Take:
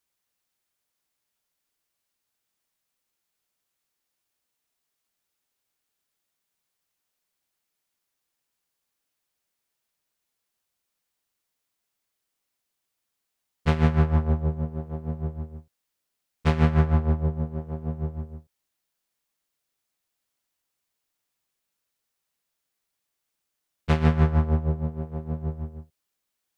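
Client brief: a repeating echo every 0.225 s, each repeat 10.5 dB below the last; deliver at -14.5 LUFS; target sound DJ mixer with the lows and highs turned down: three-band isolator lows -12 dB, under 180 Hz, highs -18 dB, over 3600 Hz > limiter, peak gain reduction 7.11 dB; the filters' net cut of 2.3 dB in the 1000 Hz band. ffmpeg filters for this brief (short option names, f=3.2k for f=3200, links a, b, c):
-filter_complex "[0:a]acrossover=split=180 3600:gain=0.251 1 0.126[a][b][c];[a][b][c]amix=inputs=3:normalize=0,equalizer=f=1k:t=o:g=-3,aecho=1:1:225|450|675:0.299|0.0896|0.0269,volume=19dB,alimiter=limit=-0.5dB:level=0:latency=1"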